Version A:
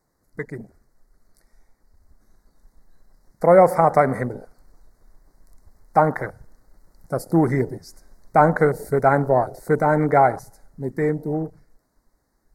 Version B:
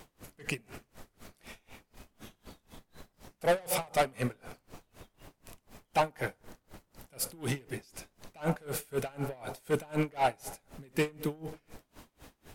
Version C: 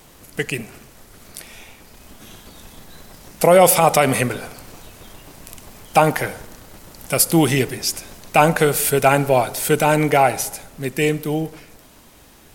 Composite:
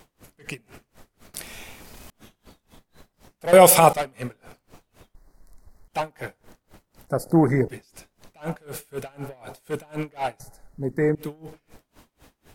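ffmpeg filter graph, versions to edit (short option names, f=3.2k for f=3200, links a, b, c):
-filter_complex "[2:a]asplit=2[a][b];[0:a]asplit=3[c][d][e];[1:a]asplit=6[f][g][h][i][j][k];[f]atrim=end=1.342[l];[a]atrim=start=1.338:end=2.102[m];[g]atrim=start=2.098:end=3.532[n];[b]atrim=start=3.528:end=3.932[o];[h]atrim=start=3.928:end=5.152[p];[c]atrim=start=5.148:end=5.882[q];[i]atrim=start=5.878:end=7.082[r];[d]atrim=start=7.078:end=7.682[s];[j]atrim=start=7.678:end=10.402[t];[e]atrim=start=10.398:end=11.152[u];[k]atrim=start=11.148[v];[l][m]acrossfade=d=0.004:c1=hsin:c2=hsin[w];[w][n]acrossfade=d=0.004:c1=hsin:c2=hsin[x];[x][o]acrossfade=d=0.004:c1=hsin:c2=hsin[y];[y][p]acrossfade=d=0.004:c1=hsin:c2=hsin[z];[z][q]acrossfade=d=0.004:c1=hsin:c2=hsin[aa];[aa][r]acrossfade=d=0.004:c1=hsin:c2=hsin[ab];[ab][s]acrossfade=d=0.004:c1=hsin:c2=hsin[ac];[ac][t]acrossfade=d=0.004:c1=hsin:c2=hsin[ad];[ad][u]acrossfade=d=0.004:c1=hsin:c2=hsin[ae];[ae][v]acrossfade=d=0.004:c1=hsin:c2=hsin"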